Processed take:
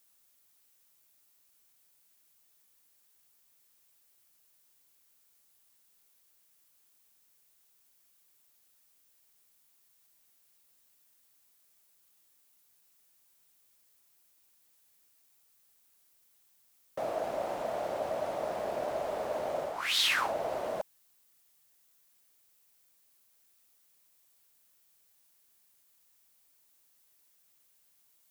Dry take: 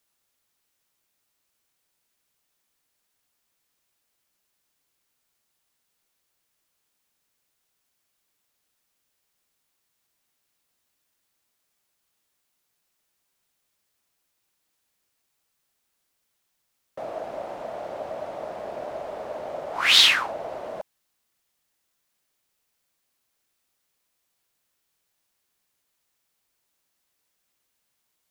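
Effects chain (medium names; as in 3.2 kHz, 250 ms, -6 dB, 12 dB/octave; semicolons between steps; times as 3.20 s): reverse; compression 10:1, threshold -27 dBFS, peak gain reduction 16 dB; reverse; treble shelf 7.4 kHz +11 dB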